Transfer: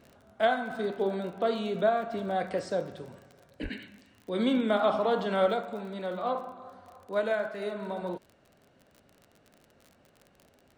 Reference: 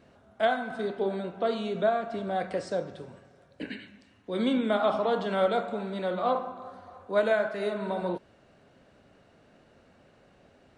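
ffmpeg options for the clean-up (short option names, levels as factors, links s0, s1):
-filter_complex "[0:a]adeclick=t=4,asplit=3[s0][s1][s2];[s0]afade=t=out:st=3.62:d=0.02[s3];[s1]highpass=f=140:w=0.5412,highpass=f=140:w=1.3066,afade=t=in:st=3.62:d=0.02,afade=t=out:st=3.74:d=0.02[s4];[s2]afade=t=in:st=3.74:d=0.02[s5];[s3][s4][s5]amix=inputs=3:normalize=0,asetnsamples=n=441:p=0,asendcmd='5.54 volume volume 4dB',volume=1"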